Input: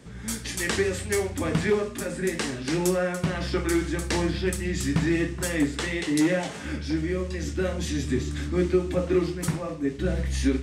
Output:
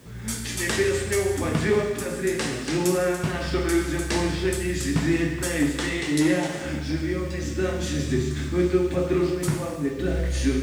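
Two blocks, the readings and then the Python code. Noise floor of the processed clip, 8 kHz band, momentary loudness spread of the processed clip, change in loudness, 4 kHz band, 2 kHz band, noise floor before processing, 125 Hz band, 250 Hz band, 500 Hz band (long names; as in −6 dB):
−32 dBFS, +2.0 dB, 5 LU, +2.0 dB, +2.0 dB, +2.0 dB, −37 dBFS, +1.5 dB, +1.5 dB, +2.5 dB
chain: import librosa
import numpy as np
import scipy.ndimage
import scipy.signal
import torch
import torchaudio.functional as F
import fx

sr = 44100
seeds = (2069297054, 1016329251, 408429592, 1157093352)

y = fx.rev_gated(x, sr, seeds[0], gate_ms=450, shape='falling', drr_db=2.5)
y = fx.quant_dither(y, sr, seeds[1], bits=10, dither='triangular')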